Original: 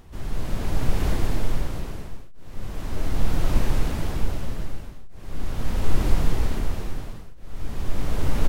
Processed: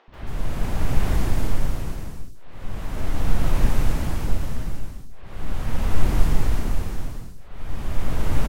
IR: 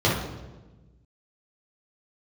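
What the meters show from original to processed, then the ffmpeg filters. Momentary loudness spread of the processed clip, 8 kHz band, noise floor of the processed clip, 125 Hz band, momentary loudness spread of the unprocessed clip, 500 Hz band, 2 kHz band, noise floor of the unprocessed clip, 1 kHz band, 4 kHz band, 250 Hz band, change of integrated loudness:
17 LU, n/a, -37 dBFS, +2.0 dB, 15 LU, -0.5 dB, +1.5 dB, -37 dBFS, +1.5 dB, -0.5 dB, +1.0 dB, +1.5 dB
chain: -filter_complex "[0:a]acrossover=split=400|4200[a][b][c];[a]adelay=80[d];[c]adelay=140[e];[d][b][e]amix=inputs=3:normalize=0,volume=2dB"

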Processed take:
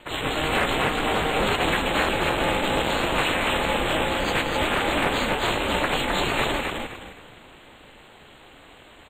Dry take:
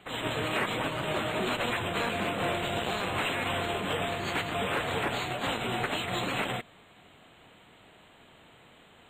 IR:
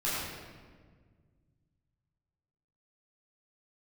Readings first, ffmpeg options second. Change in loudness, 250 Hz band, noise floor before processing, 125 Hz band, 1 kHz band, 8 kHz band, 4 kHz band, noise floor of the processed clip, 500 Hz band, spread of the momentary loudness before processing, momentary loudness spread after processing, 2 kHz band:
+7.5 dB, +7.0 dB, -57 dBFS, +5.0 dB, +7.5 dB, +7.5 dB, +7.5 dB, -49 dBFS, +7.0 dB, 2 LU, 3 LU, +7.5 dB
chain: -filter_complex "[0:a]aeval=exprs='val(0)*sin(2*PI*160*n/s)':c=same,asplit=2[a][b];[b]asplit=4[c][d][e][f];[c]adelay=259,afreqshift=-48,volume=-4dB[g];[d]adelay=518,afreqshift=-96,volume=-14.2dB[h];[e]adelay=777,afreqshift=-144,volume=-24.3dB[i];[f]adelay=1036,afreqshift=-192,volume=-34.5dB[j];[g][h][i][j]amix=inputs=4:normalize=0[k];[a][k]amix=inputs=2:normalize=0,volume=9dB"

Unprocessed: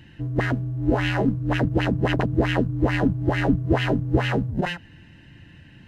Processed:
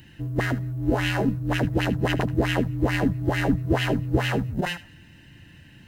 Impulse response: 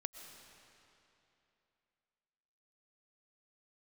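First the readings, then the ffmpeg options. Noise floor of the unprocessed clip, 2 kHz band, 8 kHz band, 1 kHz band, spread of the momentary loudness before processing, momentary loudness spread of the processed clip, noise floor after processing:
-49 dBFS, -0.5 dB, n/a, -1.5 dB, 4 LU, 4 LU, -50 dBFS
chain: -filter_complex "[0:a]aemphasis=mode=production:type=50fm,asplit=2[a][b];[b]highpass=960[c];[1:a]atrim=start_sample=2205,atrim=end_sample=6615,adelay=77[d];[c][d]afir=irnorm=-1:irlink=0,volume=-13.5dB[e];[a][e]amix=inputs=2:normalize=0,volume=-1.5dB"

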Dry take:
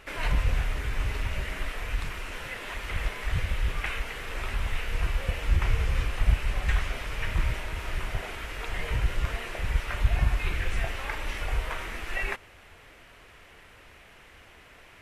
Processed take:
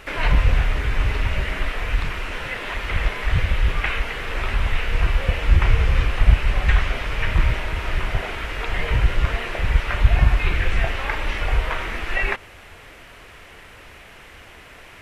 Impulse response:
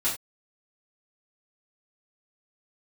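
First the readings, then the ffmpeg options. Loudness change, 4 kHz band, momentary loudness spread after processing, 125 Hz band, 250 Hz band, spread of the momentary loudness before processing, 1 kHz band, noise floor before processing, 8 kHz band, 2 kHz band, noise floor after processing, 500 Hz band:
+8.5 dB, +7.5 dB, 9 LU, +8.5 dB, +8.5 dB, 8 LU, +8.5 dB, -53 dBFS, +1.5 dB, +8.5 dB, -44 dBFS, +8.5 dB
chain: -filter_complex "[0:a]acrossover=split=4700[a][b];[b]acompressor=threshold=-60dB:ratio=4:attack=1:release=60[c];[a][c]amix=inputs=2:normalize=0,volume=8.5dB"

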